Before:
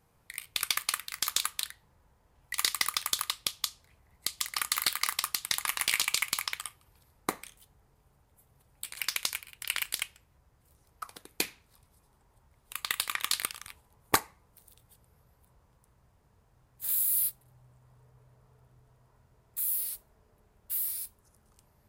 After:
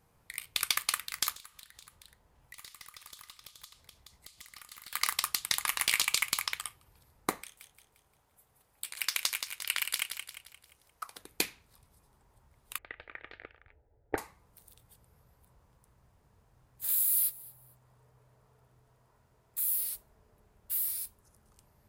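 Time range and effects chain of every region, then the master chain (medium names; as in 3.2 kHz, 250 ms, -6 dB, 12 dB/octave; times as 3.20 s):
1.32–4.93 s: delay 425 ms -16 dB + compression 3:1, threshold -48 dBFS + valve stage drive 37 dB, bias 0.2
7.43–11.18 s: bass shelf 300 Hz -10.5 dB + feedback delay 175 ms, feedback 43%, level -7.5 dB
12.78–14.18 s: low-pass 1.7 kHz 24 dB/octave + static phaser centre 450 Hz, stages 4 + tape noise reduction on one side only decoder only
16.86–19.70 s: bass shelf 170 Hz -6.5 dB + feedback delay 227 ms, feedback 26%, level -22 dB
whole clip: none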